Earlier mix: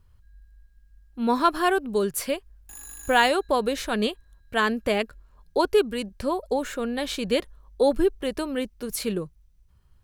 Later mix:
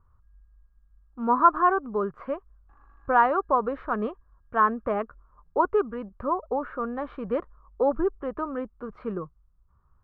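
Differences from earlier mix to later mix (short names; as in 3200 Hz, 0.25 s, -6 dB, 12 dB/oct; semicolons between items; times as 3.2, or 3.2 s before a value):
speech +7.0 dB; master: add ladder low-pass 1300 Hz, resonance 70%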